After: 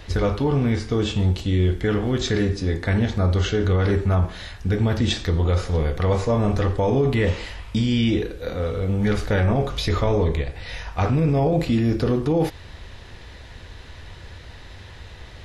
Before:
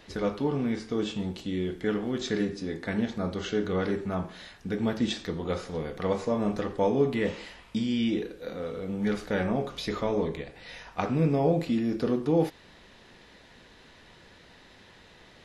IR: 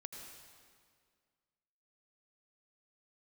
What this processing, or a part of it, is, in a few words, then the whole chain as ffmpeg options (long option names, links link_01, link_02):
car stereo with a boomy subwoofer: -af "lowshelf=frequency=130:width_type=q:width=1.5:gain=12.5,alimiter=limit=-20.5dB:level=0:latency=1:release=14,volume=8.5dB"